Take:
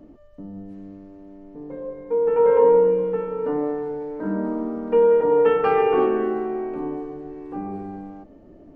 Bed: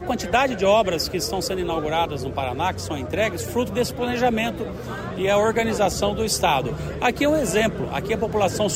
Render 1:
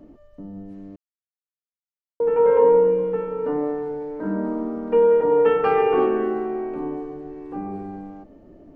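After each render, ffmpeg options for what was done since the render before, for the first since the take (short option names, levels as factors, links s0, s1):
-filter_complex "[0:a]asplit=3[s0][s1][s2];[s0]atrim=end=0.96,asetpts=PTS-STARTPTS,afade=t=out:st=0.956:d=0.004:c=hsin[s3];[s1]atrim=start=0.96:end=2.2,asetpts=PTS-STARTPTS,volume=0[s4];[s2]atrim=start=2.2,asetpts=PTS-STARTPTS,afade=t=in:d=0.004:c=hsin[s5];[s3][s4][s5]concat=n=3:v=0:a=1"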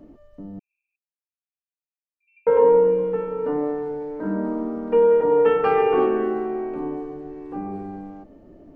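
-filter_complex "[0:a]asettb=1/sr,asplit=3[s0][s1][s2];[s0]atrim=end=0.594[s3];[s1]atrim=start=0.59:end=2.47,asetpts=PTS-STARTPTS,afade=t=in:d=0.004:c=qsin,afade=t=out:st=1.876:d=0.004:c=qsin,asuperpass=centerf=2500:order=8:qfactor=7.8[s4];[s2]atrim=start=2.466[s5];[s3][s4]acrossfade=d=0.004:c1=hsin:c2=qsin[s6];[s6][s5]acrossfade=d=0.004:c1=qsin:c2=hsin"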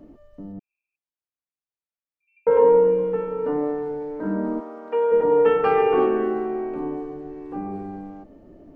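-filter_complex "[0:a]asettb=1/sr,asplit=3[s0][s1][s2];[s0]atrim=end=0.524[s3];[s1]atrim=start=0.52:end=2.51,asetpts=PTS-STARTPTS,afade=t=in:d=0.004:c=qsin,afade=t=out:st=1.986:d=0.004:c=qsin,aemphasis=mode=reproduction:type=75kf[s4];[s2]atrim=start=2.506[s5];[s3][s4]acrossfade=d=0.004:c1=hsin:c2=qsin[s6];[s6][s5]acrossfade=d=0.004:c1=qsin:c2=hsin,asplit=3[s7][s8][s9];[s7]afade=t=out:st=4.59:d=0.02[s10];[s8]highpass=590,afade=t=in:st=4.59:d=0.02,afade=t=out:st=5.11:d=0.02[s11];[s9]afade=t=in:st=5.11:d=0.02[s12];[s10][s11][s12]amix=inputs=3:normalize=0"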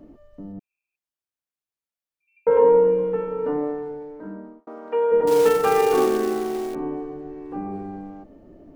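-filter_complex "[0:a]asettb=1/sr,asplit=3[s0][s1][s2];[s0]atrim=end=5.274[s3];[s1]atrim=start=5.27:end=6.75,asetpts=PTS-STARTPTS,afade=t=in:d=0.004:c=qsin,afade=t=out:st=1.476:d=0.004:c=qsin,acrusher=bits=4:mode=log:mix=0:aa=0.000001[s4];[s2]atrim=start=6.746[s5];[s3][s4]acrossfade=d=0.004:c1=hsin:c2=qsin[s6];[s6][s5]acrossfade=d=0.004:c1=qsin:c2=hsin,asplit=2[s7][s8];[s7]atrim=end=4.67,asetpts=PTS-STARTPTS,afade=t=out:st=3.48:d=1.19[s9];[s8]atrim=start=4.67,asetpts=PTS-STARTPTS,afade=t=in:d=0.004:c=hsin[s10];[s9][s10]concat=n=2:v=0:a=1"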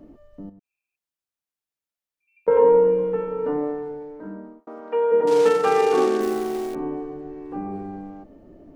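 -filter_complex "[0:a]asettb=1/sr,asplit=3[s0][s1][s2];[s0]atrim=end=0.494[s3];[s1]atrim=start=0.49:end=2.48,asetpts=PTS-STARTPTS,afade=t=in:d=0.004:c=qsin,afade=t=out:st=1.986:d=0.004:c=qsin,acompressor=threshold=0.00501:ratio=8:attack=3.2:release=140:knee=1:detection=peak[s4];[s2]atrim=start=2.476[s5];[s3][s4]acrossfade=d=0.004:c1=hsin:c2=qsin[s6];[s6][s5]acrossfade=d=0.004:c1=qsin:c2=hsin,asettb=1/sr,asplit=3[s7][s8][s9];[s7]atrim=end=4.804[s10];[s8]atrim=start=4.8:end=6.21,asetpts=PTS-STARTPTS,afade=t=in:d=0.004:c=qsin,afade=t=out:st=1.406:d=0.004:c=qsin,highpass=150,lowpass=7100[s11];[s9]atrim=start=6.206[s12];[s10][s11]acrossfade=d=0.004:c1=hsin:c2=qsin[s13];[s13][s12]acrossfade=d=0.004:c1=qsin:c2=hsin"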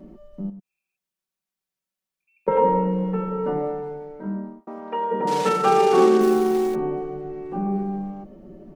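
-af "equalizer=f=190:w=1.3:g=5.5,aecho=1:1:5.3:0.82"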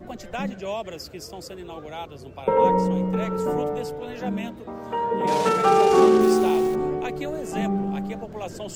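-filter_complex "[1:a]volume=0.224[s0];[0:a][s0]amix=inputs=2:normalize=0"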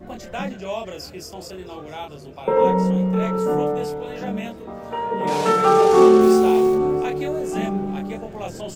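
-filter_complex "[0:a]asplit=2[s0][s1];[s1]adelay=27,volume=0.708[s2];[s0][s2]amix=inputs=2:normalize=0,aecho=1:1:667|1334|2001:0.0794|0.031|0.0121"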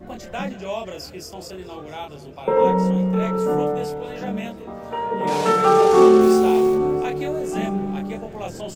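-af "aecho=1:1:198:0.0794"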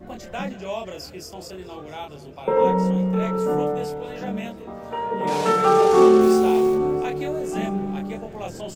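-af "volume=0.841"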